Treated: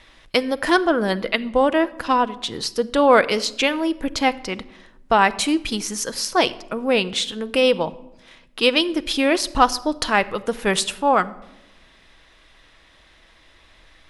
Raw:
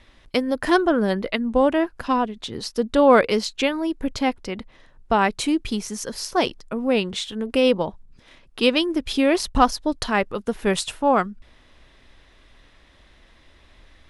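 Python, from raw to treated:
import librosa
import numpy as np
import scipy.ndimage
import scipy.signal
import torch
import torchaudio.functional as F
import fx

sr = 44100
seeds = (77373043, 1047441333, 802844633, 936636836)

p1 = fx.low_shelf(x, sr, hz=470.0, db=-8.0)
p2 = fx.rider(p1, sr, range_db=3, speed_s=0.5)
p3 = p1 + (p2 * 10.0 ** (-1.0 / 20.0))
p4 = fx.room_shoebox(p3, sr, seeds[0], volume_m3=3700.0, walls='furnished', distance_m=0.63)
y = p4 * 10.0 ** (-1.0 / 20.0)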